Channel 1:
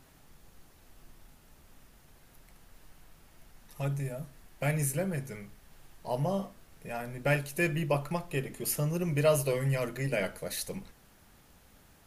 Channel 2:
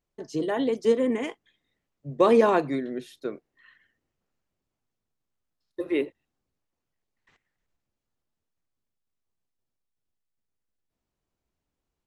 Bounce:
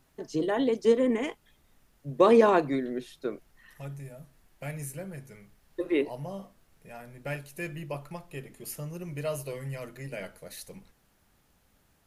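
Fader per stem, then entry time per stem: -7.5, -0.5 dB; 0.00, 0.00 s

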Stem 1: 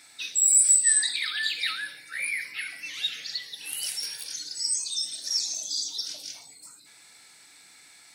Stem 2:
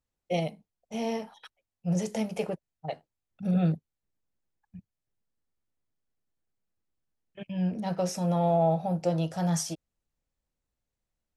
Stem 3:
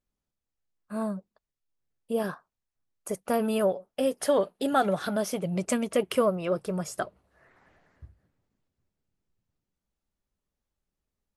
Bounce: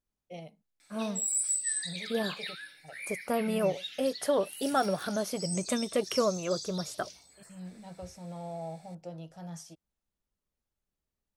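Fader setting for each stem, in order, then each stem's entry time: -11.0, -15.5, -3.5 dB; 0.80, 0.00, 0.00 s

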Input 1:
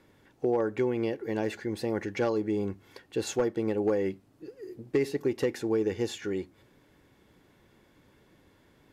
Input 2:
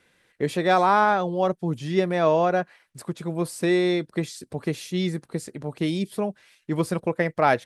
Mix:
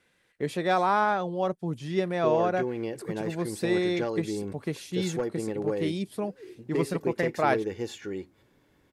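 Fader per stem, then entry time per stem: -3.0, -5.0 dB; 1.80, 0.00 s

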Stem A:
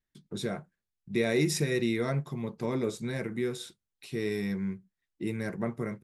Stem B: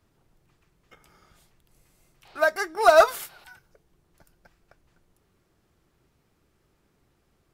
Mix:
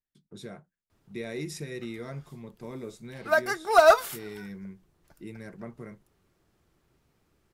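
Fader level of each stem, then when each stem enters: -9.0, -1.5 dB; 0.00, 0.90 s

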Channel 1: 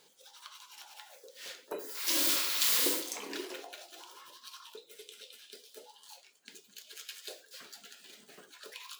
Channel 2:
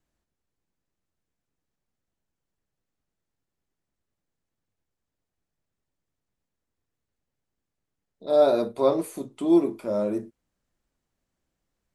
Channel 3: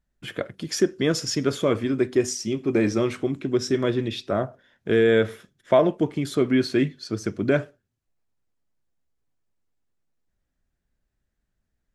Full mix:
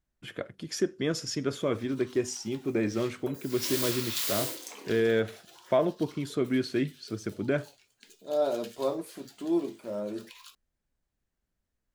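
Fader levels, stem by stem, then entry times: -3.5, -8.5, -7.0 dB; 1.55, 0.00, 0.00 s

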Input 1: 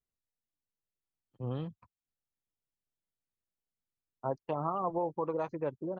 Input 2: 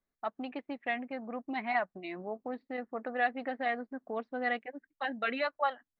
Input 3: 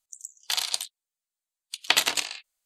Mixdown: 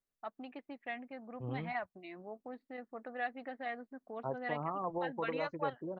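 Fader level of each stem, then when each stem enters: -4.5 dB, -8.0 dB, off; 0.00 s, 0.00 s, off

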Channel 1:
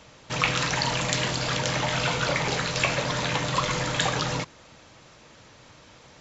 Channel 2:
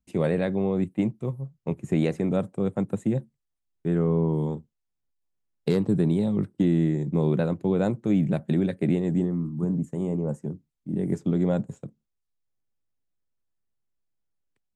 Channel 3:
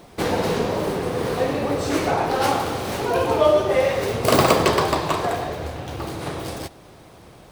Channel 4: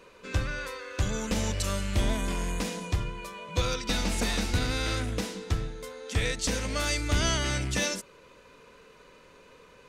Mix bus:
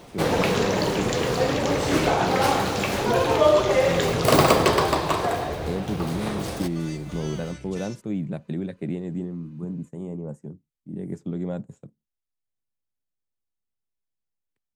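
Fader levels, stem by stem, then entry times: -5.0, -6.0, -1.0, -14.0 dB; 0.00, 0.00, 0.00, 0.00 s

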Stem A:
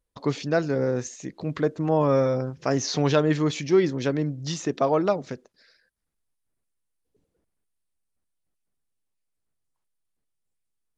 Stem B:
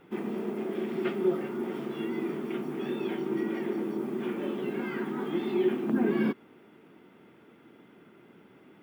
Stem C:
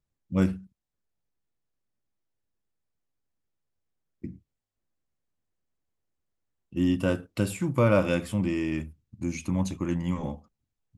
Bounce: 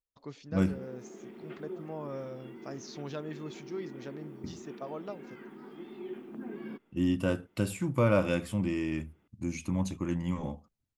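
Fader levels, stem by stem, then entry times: -18.5, -15.0, -3.5 dB; 0.00, 0.45, 0.20 s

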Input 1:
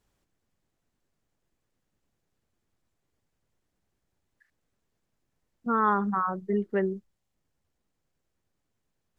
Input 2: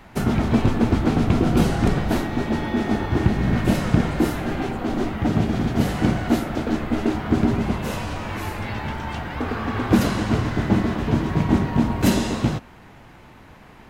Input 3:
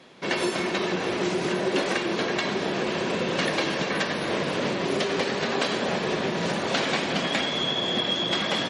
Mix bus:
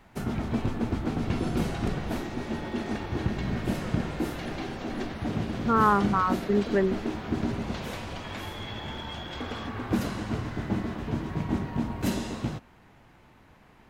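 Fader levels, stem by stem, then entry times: +2.5, -10.0, -16.0 dB; 0.00, 0.00, 1.00 s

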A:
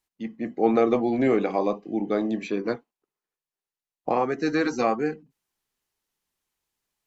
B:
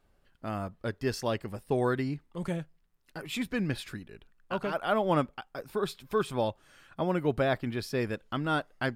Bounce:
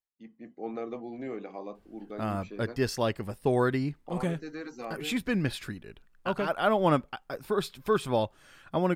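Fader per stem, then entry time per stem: -16.0, +2.5 dB; 0.00, 1.75 s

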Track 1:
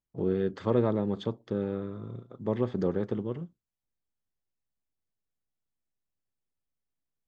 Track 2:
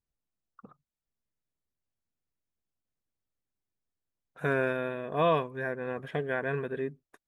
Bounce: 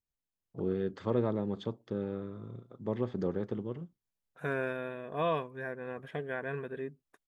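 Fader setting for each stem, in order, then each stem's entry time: -4.5, -5.5 dB; 0.40, 0.00 s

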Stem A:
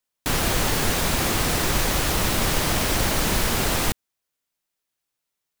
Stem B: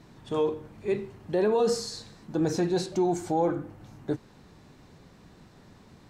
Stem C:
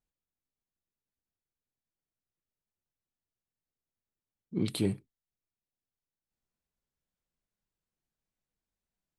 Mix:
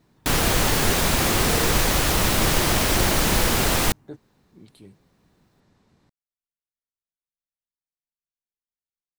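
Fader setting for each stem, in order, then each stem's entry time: +2.0, -9.5, -18.5 dB; 0.00, 0.00, 0.00 s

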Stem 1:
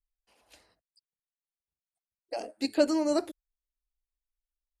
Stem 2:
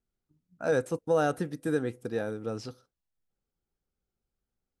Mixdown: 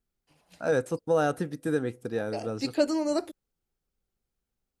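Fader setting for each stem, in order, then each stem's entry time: -0.5, +1.0 dB; 0.00, 0.00 s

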